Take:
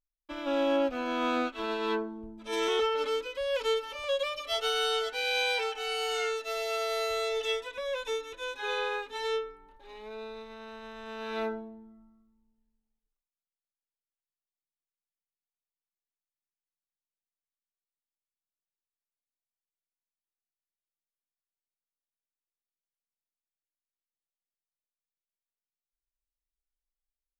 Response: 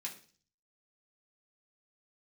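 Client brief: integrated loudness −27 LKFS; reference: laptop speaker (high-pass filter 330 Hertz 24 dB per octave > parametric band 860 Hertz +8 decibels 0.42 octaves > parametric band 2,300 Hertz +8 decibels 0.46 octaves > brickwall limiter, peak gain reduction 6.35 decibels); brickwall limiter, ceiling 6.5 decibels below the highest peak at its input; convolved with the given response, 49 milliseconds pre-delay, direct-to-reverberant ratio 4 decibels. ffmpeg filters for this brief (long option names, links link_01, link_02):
-filter_complex "[0:a]alimiter=limit=-23.5dB:level=0:latency=1,asplit=2[link_01][link_02];[1:a]atrim=start_sample=2205,adelay=49[link_03];[link_02][link_03]afir=irnorm=-1:irlink=0,volume=-2.5dB[link_04];[link_01][link_04]amix=inputs=2:normalize=0,highpass=frequency=330:width=0.5412,highpass=frequency=330:width=1.3066,equalizer=frequency=860:width_type=o:width=0.42:gain=8,equalizer=frequency=2300:width_type=o:width=0.46:gain=8,volume=3.5dB,alimiter=limit=-18dB:level=0:latency=1"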